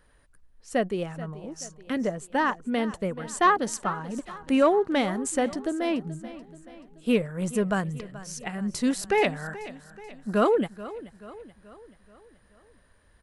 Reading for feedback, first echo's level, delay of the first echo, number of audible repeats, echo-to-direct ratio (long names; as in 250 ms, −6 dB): 52%, −16.5 dB, 431 ms, 4, −15.0 dB